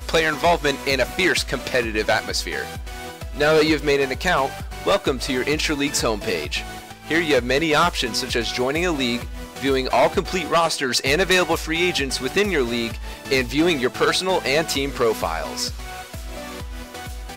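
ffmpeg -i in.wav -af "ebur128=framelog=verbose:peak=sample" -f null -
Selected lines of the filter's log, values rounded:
Integrated loudness:
  I:         -20.7 LUFS
  Threshold: -31.2 LUFS
Loudness range:
  LRA:         2.1 LU
  Threshold: -41.0 LUFS
  LRA low:   -22.1 LUFS
  LRA high:  -20.0 LUFS
Sample peak:
  Peak:       -9.7 dBFS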